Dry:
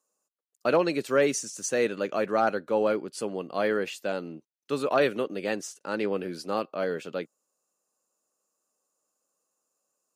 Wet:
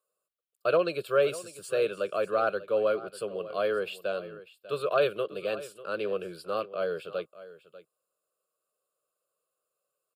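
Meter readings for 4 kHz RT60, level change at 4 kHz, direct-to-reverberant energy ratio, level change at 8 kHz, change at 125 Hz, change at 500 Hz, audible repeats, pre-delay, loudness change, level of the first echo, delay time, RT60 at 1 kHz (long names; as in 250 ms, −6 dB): no reverb audible, −2.0 dB, no reverb audible, below −10 dB, −5.0 dB, −1.0 dB, 1, no reverb audible, −2.0 dB, −16.5 dB, 594 ms, no reverb audible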